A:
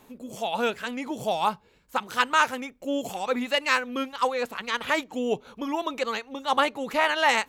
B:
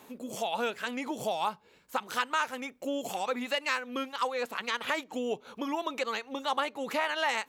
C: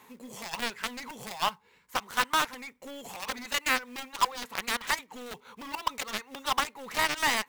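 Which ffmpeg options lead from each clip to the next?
ffmpeg -i in.wav -af "acompressor=threshold=-33dB:ratio=2.5,highpass=frequency=250:poles=1,volume=2.5dB" out.wav
ffmpeg -i in.wav -af "acrusher=bits=4:mode=log:mix=0:aa=0.000001,equalizer=frequency=315:width_type=o:width=0.33:gain=-10,equalizer=frequency=630:width_type=o:width=0.33:gain=-10,equalizer=frequency=1000:width_type=o:width=0.33:gain=7,equalizer=frequency=2000:width_type=o:width=0.33:gain=8,aeval=exprs='0.188*(cos(1*acos(clip(val(0)/0.188,-1,1)))-cos(1*PI/2))+0.015*(cos(6*acos(clip(val(0)/0.188,-1,1)))-cos(6*PI/2))+0.0473*(cos(7*acos(clip(val(0)/0.188,-1,1)))-cos(7*PI/2))+0.0106*(cos(8*acos(clip(val(0)/0.188,-1,1)))-cos(8*PI/2))':channel_layout=same" out.wav

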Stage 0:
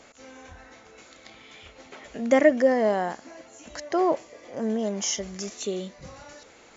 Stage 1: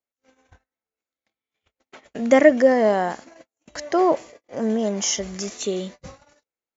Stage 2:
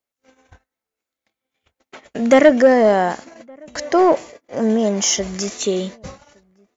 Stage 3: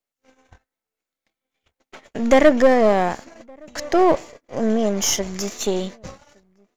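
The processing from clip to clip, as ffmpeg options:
ffmpeg -i in.wav -af "agate=range=-48dB:threshold=-42dB:ratio=16:detection=peak,volume=4.5dB" out.wav
ffmpeg -i in.wav -filter_complex "[0:a]acontrast=69,asplit=2[link_01][link_02];[link_02]adelay=1166,volume=-29dB,highshelf=frequency=4000:gain=-26.2[link_03];[link_01][link_03]amix=inputs=2:normalize=0,volume=-1dB" out.wav
ffmpeg -i in.wav -af "aeval=exprs='if(lt(val(0),0),0.447*val(0),val(0))':channel_layout=same" out.wav

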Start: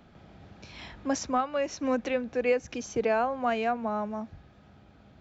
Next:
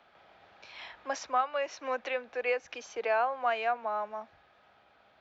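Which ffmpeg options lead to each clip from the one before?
ffmpeg -i in.wav -filter_complex "[0:a]acrossover=split=530 4800:gain=0.0631 1 0.141[link_01][link_02][link_03];[link_01][link_02][link_03]amix=inputs=3:normalize=0,acrossover=split=230|3700[link_04][link_05][link_06];[link_04]alimiter=level_in=33.5dB:limit=-24dB:level=0:latency=1,volume=-33.5dB[link_07];[link_07][link_05][link_06]amix=inputs=3:normalize=0,volume=1dB" out.wav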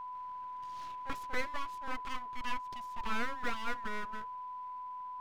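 ffmpeg -i in.wav -af "highshelf=frequency=2500:gain=-11,aeval=exprs='abs(val(0))':channel_layout=same,aeval=exprs='val(0)+0.0126*sin(2*PI*1000*n/s)':channel_layout=same,volume=-2.5dB" out.wav

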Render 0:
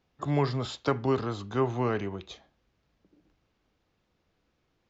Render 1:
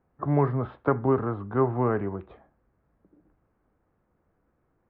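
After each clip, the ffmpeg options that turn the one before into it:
ffmpeg -i in.wav -af "lowpass=frequency=1600:width=0.5412,lowpass=frequency=1600:width=1.3066,volume=3.5dB" out.wav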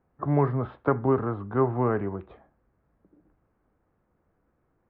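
ffmpeg -i in.wav -af anull out.wav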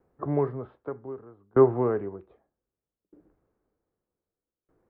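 ffmpeg -i in.wav -af "equalizer=frequency=420:width_type=o:width=1:gain=8.5,aeval=exprs='val(0)*pow(10,-30*if(lt(mod(0.64*n/s,1),2*abs(0.64)/1000),1-mod(0.64*n/s,1)/(2*abs(0.64)/1000),(mod(0.64*n/s,1)-2*abs(0.64)/1000)/(1-2*abs(0.64)/1000))/20)':channel_layout=same" out.wav

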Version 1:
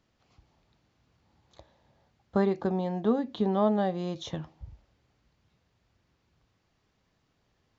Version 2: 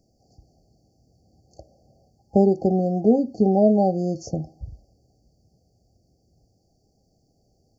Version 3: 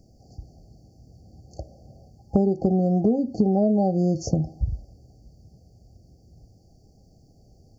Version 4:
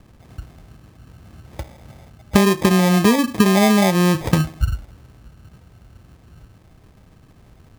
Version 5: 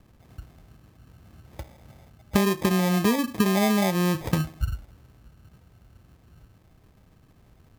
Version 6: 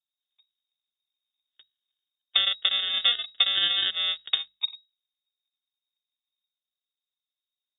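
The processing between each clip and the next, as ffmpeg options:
ffmpeg -i in.wav -af "afftfilt=real='re*(1-between(b*sr/4096,810,4400))':imag='im*(1-between(b*sr/4096,810,4400))':win_size=4096:overlap=0.75,volume=8.5dB" out.wav
ffmpeg -i in.wav -af "lowshelf=frequency=200:gain=9,acompressor=threshold=-23dB:ratio=6,volume=5dB" out.wav
ffmpeg -i in.wav -af "acrusher=samples=31:mix=1:aa=0.000001,volume=6dB" out.wav
ffmpeg -i in.wav -af "equalizer=frequency=13000:width=5.8:gain=8,volume=-7.5dB" out.wav
ffmpeg -i in.wav -af "aeval=exprs='0.376*(cos(1*acos(clip(val(0)/0.376,-1,1)))-cos(1*PI/2))+0.0531*(cos(2*acos(clip(val(0)/0.376,-1,1)))-cos(2*PI/2))+0.0133*(cos(3*acos(clip(val(0)/0.376,-1,1)))-cos(3*PI/2))+0.0473*(cos(7*acos(clip(val(0)/0.376,-1,1)))-cos(7*PI/2))':channel_layout=same,lowpass=frequency=3200:width_type=q:width=0.5098,lowpass=frequency=3200:width_type=q:width=0.6013,lowpass=frequency=3200:width_type=q:width=0.9,lowpass=frequency=3200:width_type=q:width=2.563,afreqshift=-3800,bandreject=frequency=50:width_type=h:width=6,bandreject=frequency=100:width_type=h:width=6,bandreject=frequency=150:width_type=h:width=6,bandreject=frequency=200:width_type=h:width=6" out.wav

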